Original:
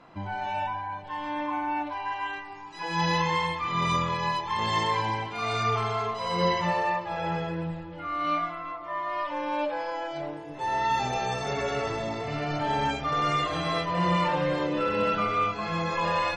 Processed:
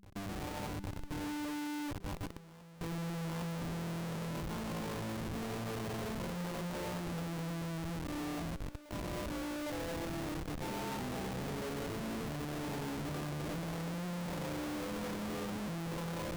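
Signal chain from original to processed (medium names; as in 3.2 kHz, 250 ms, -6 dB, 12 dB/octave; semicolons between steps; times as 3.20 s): ladder band-pass 230 Hz, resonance 40%; Chebyshev shaper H 3 -22 dB, 7 -37 dB, 8 -25 dB, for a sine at -27 dBFS; Schmitt trigger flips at -56 dBFS; de-hum 198 Hz, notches 2; reverse echo 808 ms -16 dB; trim +8 dB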